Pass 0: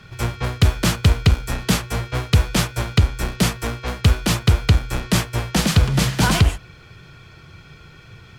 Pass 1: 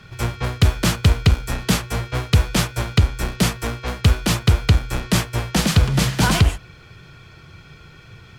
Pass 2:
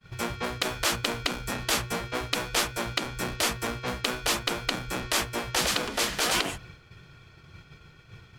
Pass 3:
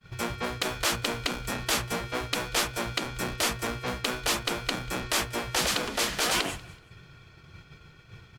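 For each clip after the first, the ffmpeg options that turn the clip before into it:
-af anull
-af "agate=range=-33dB:threshold=-38dB:ratio=3:detection=peak,afftfilt=real='re*lt(hypot(re,im),0.355)':imag='im*lt(hypot(re,im),0.355)':win_size=1024:overlap=0.75,volume=-3dB"
-af "asoftclip=type=tanh:threshold=-13.5dB,aecho=1:1:189|378:0.0668|0.0247"

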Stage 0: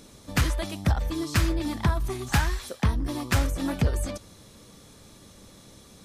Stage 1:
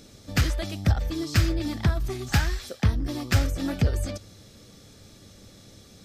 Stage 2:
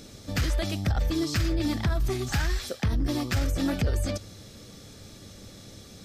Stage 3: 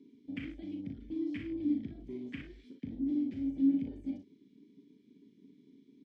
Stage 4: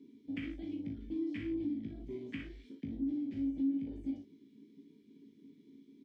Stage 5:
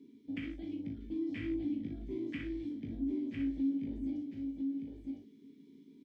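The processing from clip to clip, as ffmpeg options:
-af "equalizer=f=100:t=o:w=0.33:g=6,equalizer=f=1k:t=o:w=0.33:g=-10,equalizer=f=5k:t=o:w=0.33:g=4,equalizer=f=10k:t=o:w=0.33:g=-8"
-af "alimiter=limit=-22dB:level=0:latency=1:release=33,volume=3.5dB"
-filter_complex "[0:a]asplit=3[a][b][c];[a]bandpass=f=270:t=q:w=8,volume=0dB[d];[b]bandpass=f=2.29k:t=q:w=8,volume=-6dB[e];[c]bandpass=f=3.01k:t=q:w=8,volume=-9dB[f];[d][e][f]amix=inputs=3:normalize=0,afwtdn=0.00562,aecho=1:1:37|58:0.501|0.355"
-filter_complex "[0:a]acompressor=threshold=-36dB:ratio=3,asplit=2[a][b];[b]adelay=18,volume=-5dB[c];[a][c]amix=inputs=2:normalize=0"
-af "aecho=1:1:1004:0.631"

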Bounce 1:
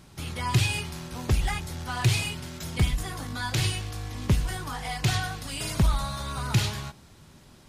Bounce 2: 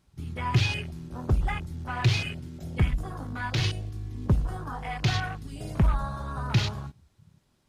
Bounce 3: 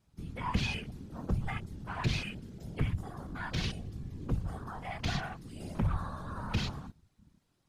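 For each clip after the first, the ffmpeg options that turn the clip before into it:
-af "afwtdn=0.0178"
-af "asoftclip=type=tanh:threshold=-16dB,afftfilt=real='hypot(re,im)*cos(2*PI*random(0))':imag='hypot(re,im)*sin(2*PI*random(1))':win_size=512:overlap=0.75"

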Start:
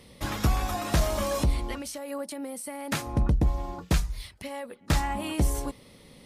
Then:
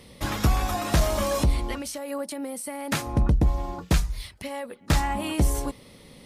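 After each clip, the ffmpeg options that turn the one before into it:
-af "acontrast=81,volume=-4dB"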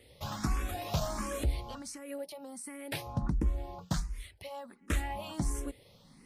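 -filter_complex "[0:a]asplit=2[a][b];[b]afreqshift=1.4[c];[a][c]amix=inputs=2:normalize=1,volume=-7dB"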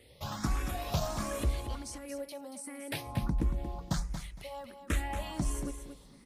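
-af "aecho=1:1:231|462|693:0.355|0.071|0.0142"

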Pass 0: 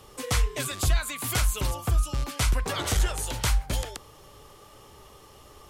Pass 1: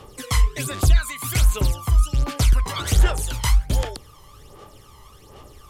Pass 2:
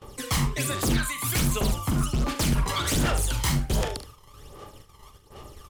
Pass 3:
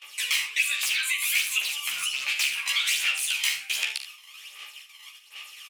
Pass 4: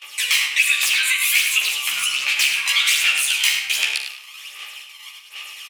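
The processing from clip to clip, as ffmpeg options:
-af "aphaser=in_gain=1:out_gain=1:delay=1:decay=0.63:speed=1.3:type=sinusoidal"
-filter_complex "[0:a]aeval=exprs='0.119*(abs(mod(val(0)/0.119+3,4)-2)-1)':c=same,agate=range=-20dB:threshold=-45dB:ratio=16:detection=peak,asplit=2[a][b];[b]aecho=0:1:43|73:0.316|0.237[c];[a][c]amix=inputs=2:normalize=0"
-filter_complex "[0:a]highpass=f=2.5k:t=q:w=5.8,asplit=2[a][b];[b]adelay=14,volume=-3dB[c];[a][c]amix=inputs=2:normalize=0,acompressor=threshold=-31dB:ratio=2,volume=4dB"
-filter_complex "[0:a]asplit=2[a][b];[b]adelay=103,lowpass=f=3.8k:p=1,volume=-5dB,asplit=2[c][d];[d]adelay=103,lowpass=f=3.8k:p=1,volume=0.35,asplit=2[e][f];[f]adelay=103,lowpass=f=3.8k:p=1,volume=0.35,asplit=2[g][h];[h]adelay=103,lowpass=f=3.8k:p=1,volume=0.35[i];[a][c][e][g][i]amix=inputs=5:normalize=0,volume=7dB"

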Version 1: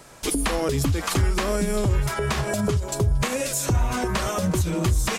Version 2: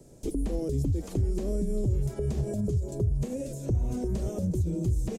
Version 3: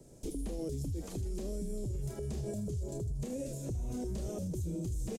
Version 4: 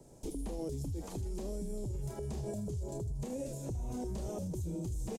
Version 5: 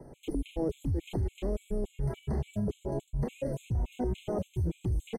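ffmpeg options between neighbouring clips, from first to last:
-filter_complex "[0:a]firequalizer=gain_entry='entry(380,0);entry(1100,-27);entry(6700,-10);entry(11000,-12)':delay=0.05:min_phase=1,acrossover=split=110|3300[a][b][c];[a]acompressor=threshold=-26dB:ratio=4[d];[b]acompressor=threshold=-30dB:ratio=4[e];[c]acompressor=threshold=-51dB:ratio=4[f];[d][e][f]amix=inputs=3:normalize=0"
-filter_complex "[0:a]acrossover=split=2700[a][b];[a]alimiter=level_in=3.5dB:limit=-24dB:level=0:latency=1:release=19,volume=-3.5dB[c];[b]aecho=1:1:30|78|154.8|277.7|474.3:0.631|0.398|0.251|0.158|0.1[d];[c][d]amix=inputs=2:normalize=0,volume=-3.5dB"
-af "equalizer=f=890:t=o:w=0.67:g=9,volume=-1.5dB"
-af "highshelf=f=3.9k:t=q:w=3:g=-9.5,afftfilt=real='re*gt(sin(2*PI*3.5*pts/sr)*(1-2*mod(floor(b*sr/1024/2100),2)),0)':imag='im*gt(sin(2*PI*3.5*pts/sr)*(1-2*mod(floor(b*sr/1024/2100),2)),0)':win_size=1024:overlap=0.75,volume=8.5dB"

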